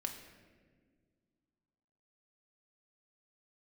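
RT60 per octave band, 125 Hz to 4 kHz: 2.6, 2.6, 2.2, 1.3, 1.4, 1.0 s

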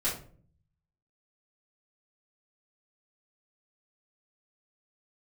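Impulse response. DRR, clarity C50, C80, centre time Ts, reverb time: -10.0 dB, 6.5 dB, 11.5 dB, 30 ms, 0.50 s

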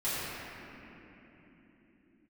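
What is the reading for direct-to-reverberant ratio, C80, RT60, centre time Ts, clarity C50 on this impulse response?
-15.0 dB, -3.5 dB, not exponential, 0.229 s, -5.0 dB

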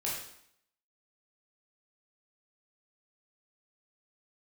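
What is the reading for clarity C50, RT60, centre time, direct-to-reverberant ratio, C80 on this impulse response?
2.0 dB, 0.70 s, 51 ms, -6.0 dB, 5.5 dB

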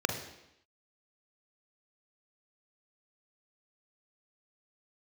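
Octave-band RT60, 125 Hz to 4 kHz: 0.75, 0.85, 0.85, 0.85, 0.85, 0.85 s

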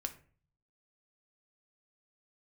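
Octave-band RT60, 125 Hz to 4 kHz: 0.85, 0.60, 0.45, 0.40, 0.40, 0.25 s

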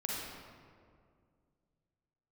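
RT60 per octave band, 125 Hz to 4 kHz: 3.0, 2.7, 2.3, 2.0, 1.6, 1.1 s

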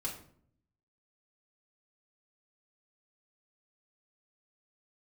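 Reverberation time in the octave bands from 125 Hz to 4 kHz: 1.0, 0.90, 0.65, 0.50, 0.45, 0.40 s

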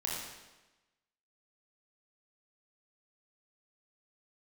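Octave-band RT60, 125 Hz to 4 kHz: 1.1, 1.1, 1.1, 1.1, 1.1, 1.0 s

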